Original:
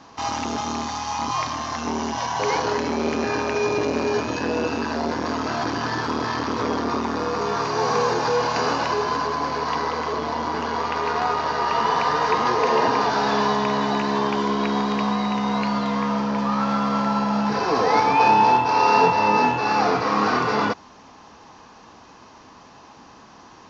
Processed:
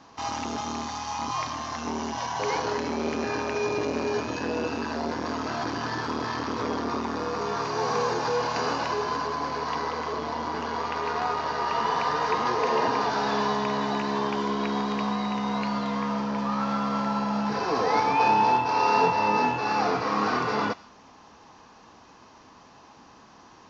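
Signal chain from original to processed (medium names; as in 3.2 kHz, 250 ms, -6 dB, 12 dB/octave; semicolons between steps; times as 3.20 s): on a send: tilt EQ +4 dB/octave + reverberation RT60 0.55 s, pre-delay 60 ms, DRR 21.5 dB; on the sum: trim -5 dB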